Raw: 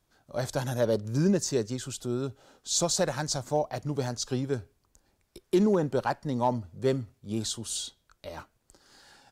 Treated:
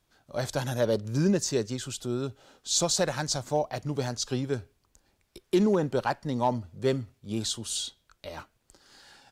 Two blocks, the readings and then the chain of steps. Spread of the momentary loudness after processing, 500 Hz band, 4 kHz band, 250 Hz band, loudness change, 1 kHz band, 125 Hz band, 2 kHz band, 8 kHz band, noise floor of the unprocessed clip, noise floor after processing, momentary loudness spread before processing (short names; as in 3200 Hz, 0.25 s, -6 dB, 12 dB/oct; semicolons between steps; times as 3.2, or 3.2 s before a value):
13 LU, 0.0 dB, +2.5 dB, 0.0 dB, +0.5 dB, +0.5 dB, 0.0 dB, +2.0 dB, +1.0 dB, -73 dBFS, -73 dBFS, 13 LU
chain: bell 2900 Hz +4 dB 1.5 oct